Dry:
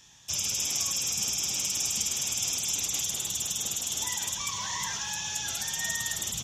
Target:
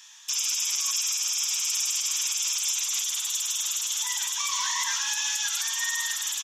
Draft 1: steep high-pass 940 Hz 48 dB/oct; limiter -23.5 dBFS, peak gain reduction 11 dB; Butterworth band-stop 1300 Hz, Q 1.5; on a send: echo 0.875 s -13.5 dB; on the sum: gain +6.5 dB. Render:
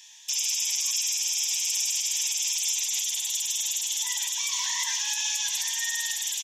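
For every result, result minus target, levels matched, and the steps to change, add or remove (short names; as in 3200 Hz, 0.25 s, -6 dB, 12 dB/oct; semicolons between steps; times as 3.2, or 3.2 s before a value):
1000 Hz band -6.0 dB; echo 0.327 s early
remove: Butterworth band-stop 1300 Hz, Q 1.5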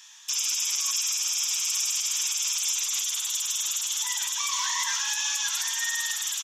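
echo 0.327 s early
change: echo 1.202 s -13.5 dB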